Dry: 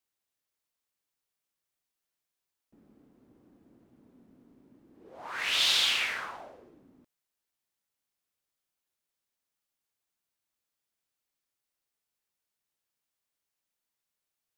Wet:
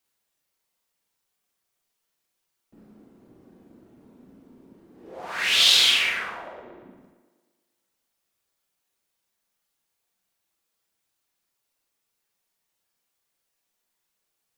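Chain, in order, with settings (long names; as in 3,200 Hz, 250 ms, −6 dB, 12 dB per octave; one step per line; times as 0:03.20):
reverb reduction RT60 0.95 s
dynamic equaliser 940 Hz, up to −6 dB, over −49 dBFS, Q 0.99
delay with a band-pass on its return 115 ms, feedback 58%, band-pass 590 Hz, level −6 dB
four-comb reverb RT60 0.5 s, combs from 33 ms, DRR −1 dB
level +7 dB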